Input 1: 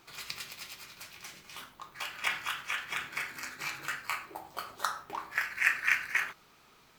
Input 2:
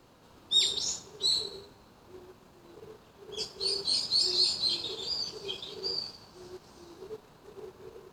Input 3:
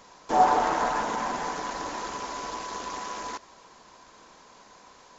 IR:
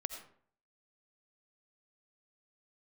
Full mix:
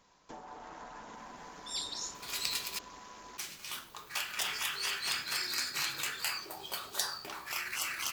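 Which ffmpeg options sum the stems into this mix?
-filter_complex "[0:a]bandreject=frequency=2100:width=19,adelay=2150,volume=-1dB,asplit=3[link_01][link_02][link_03];[link_01]atrim=end=2.79,asetpts=PTS-STARTPTS,afade=type=out:start_time=2.786:duration=0.004:curve=hsin[link_04];[link_02]atrim=start=2.79:end=3.38,asetpts=PTS-STARTPTS,volume=0[link_05];[link_03]atrim=start=3.38,asetpts=PTS-STARTPTS,afade=type=in:duration=0.004:curve=hsin[link_06];[link_04][link_05][link_06]concat=n=3:v=0:a=1[link_07];[1:a]adelay=1150,volume=-15.5dB[link_08];[2:a]bass=frequency=250:gain=7,treble=frequency=4000:gain=-6,acompressor=threshold=-30dB:ratio=4,volume=-16.5dB[link_09];[link_07][link_08][link_09]amix=inputs=3:normalize=0,afftfilt=real='re*lt(hypot(re,im),0.0501)':imag='im*lt(hypot(re,im),0.0501)':win_size=1024:overlap=0.75,highshelf=frequency=2500:gain=9.5"

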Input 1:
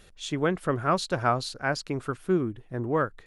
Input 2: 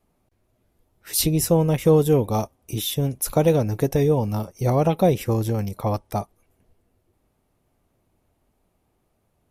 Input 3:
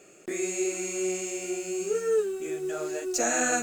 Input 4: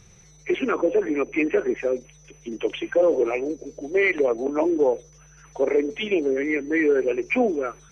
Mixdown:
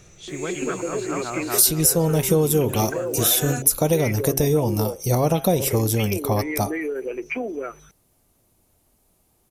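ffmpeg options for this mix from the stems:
ffmpeg -i stem1.wav -i stem2.wav -i stem3.wav -i stem4.wav -filter_complex "[0:a]volume=-4dB,asplit=2[link_01][link_02];[link_02]volume=-4dB[link_03];[1:a]bass=frequency=250:gain=0,treble=frequency=4000:gain=13,bandreject=frequency=134.6:width_type=h:width=4,bandreject=frequency=269.2:width_type=h:width=4,bandreject=frequency=403.8:width_type=h:width=4,bandreject=frequency=538.4:width_type=h:width=4,bandreject=frequency=673:width_type=h:width=4,bandreject=frequency=807.6:width_type=h:width=4,bandreject=frequency=942.2:width_type=h:width=4,bandreject=frequency=1076.8:width_type=h:width=4,bandreject=frequency=1211.4:width_type=h:width=4,bandreject=frequency=1346:width_type=h:width=4,bandreject=frequency=1480.6:width_type=h:width=4,bandreject=frequency=1615.2:width_type=h:width=4,bandreject=frequency=1749.8:width_type=h:width=4,bandreject=frequency=1884.4:width_type=h:width=4,bandreject=frequency=2019:width_type=h:width=4,bandreject=frequency=2153.6:width_type=h:width=4,bandreject=frequency=2288.2:width_type=h:width=4,bandreject=frequency=2422.8:width_type=h:width=4,bandreject=frequency=2557.4:width_type=h:width=4,bandreject=frequency=2692:width_type=h:width=4,bandreject=frequency=2826.6:width_type=h:width=4,bandreject=frequency=2961.2:width_type=h:width=4,bandreject=frequency=3095.8:width_type=h:width=4,bandreject=frequency=3230.4:width_type=h:width=4,bandreject=frequency=3365:width_type=h:width=4,bandreject=frequency=3499.6:width_type=h:width=4,adelay=450,volume=2.5dB[link_04];[2:a]volume=-4dB[link_05];[3:a]volume=0.5dB[link_06];[link_01][link_06]amix=inputs=2:normalize=0,acompressor=threshold=-25dB:ratio=6,volume=0dB[link_07];[link_03]aecho=0:1:238|476|714|952|1190|1428:1|0.41|0.168|0.0689|0.0283|0.0116[link_08];[link_04][link_05][link_07][link_08]amix=inputs=4:normalize=0,acompressor=threshold=-16dB:ratio=3" out.wav

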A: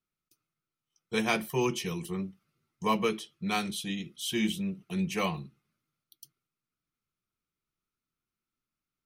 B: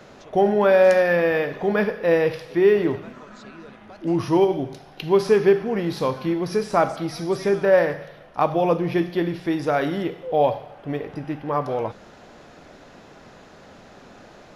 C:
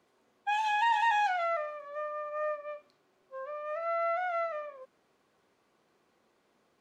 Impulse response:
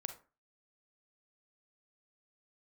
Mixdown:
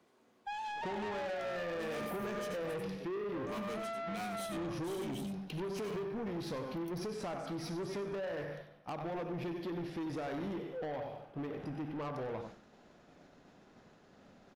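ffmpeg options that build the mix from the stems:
-filter_complex "[0:a]highshelf=frequency=8300:gain=6.5,asoftclip=type=hard:threshold=-28.5dB,adelay=650,volume=-9dB,asplit=2[link_01][link_02];[link_02]volume=-8dB[link_03];[1:a]acompressor=threshold=-20dB:ratio=6,adelay=500,volume=-7.5dB,asplit=2[link_04][link_05];[link_05]volume=-13dB[link_06];[2:a]acrossover=split=250[link_07][link_08];[link_08]acompressor=threshold=-36dB:ratio=6[link_09];[link_07][link_09]amix=inputs=2:normalize=0,volume=0dB[link_10];[link_01][link_04]amix=inputs=2:normalize=0,agate=range=-33dB:threshold=-45dB:ratio=3:detection=peak,acompressor=threshold=-34dB:ratio=2.5,volume=0dB[link_11];[link_03][link_06]amix=inputs=2:normalize=0,aecho=0:1:94:1[link_12];[link_10][link_11][link_12]amix=inputs=3:normalize=0,equalizer=frequency=220:width_type=o:width=1.5:gain=4.5,asoftclip=type=tanh:threshold=-35.5dB"

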